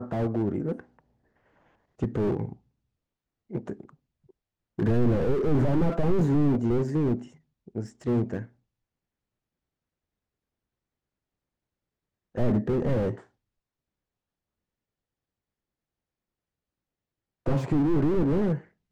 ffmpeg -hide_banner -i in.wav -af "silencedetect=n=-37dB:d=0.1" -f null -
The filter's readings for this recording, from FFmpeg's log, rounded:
silence_start: 0.80
silence_end: 2.02 | silence_duration: 1.22
silence_start: 2.53
silence_end: 3.51 | silence_duration: 0.98
silence_start: 3.89
silence_end: 4.79 | silence_duration: 0.89
silence_start: 7.26
silence_end: 7.68 | silence_duration: 0.43
silence_start: 7.87
silence_end: 8.05 | silence_duration: 0.19
silence_start: 8.45
silence_end: 12.35 | silence_duration: 3.91
silence_start: 13.17
silence_end: 17.46 | silence_duration: 4.29
silence_start: 18.59
silence_end: 18.92 | silence_duration: 0.33